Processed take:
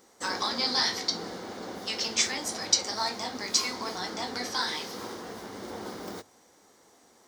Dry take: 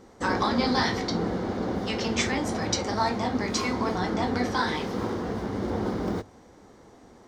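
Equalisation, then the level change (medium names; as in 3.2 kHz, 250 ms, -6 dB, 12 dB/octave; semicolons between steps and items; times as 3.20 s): RIAA curve recording; dynamic bell 4.8 kHz, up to +5 dB, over -43 dBFS, Q 1.9; -6.0 dB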